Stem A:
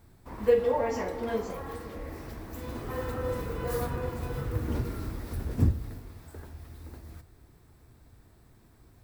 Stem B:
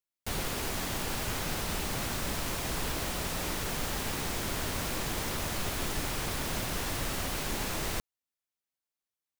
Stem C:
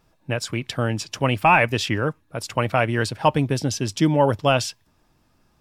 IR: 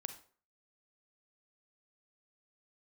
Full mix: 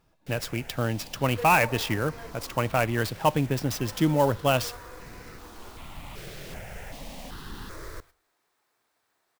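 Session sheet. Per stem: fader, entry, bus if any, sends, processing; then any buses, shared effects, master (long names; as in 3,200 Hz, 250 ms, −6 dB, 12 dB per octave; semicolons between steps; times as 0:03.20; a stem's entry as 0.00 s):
−5.5 dB, 0.90 s, no send, high-pass filter 780 Hz 12 dB per octave
−5.0 dB, 0.00 s, send −8.5 dB, high-shelf EQ 6,100 Hz −9.5 dB; step-sequenced phaser 2.6 Hz 260–3,300 Hz; automatic ducking −8 dB, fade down 0.25 s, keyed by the third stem
−5.5 dB, 0.00 s, send −13.5 dB, no processing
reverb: on, RT60 0.45 s, pre-delay 32 ms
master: converter with an unsteady clock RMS 0.022 ms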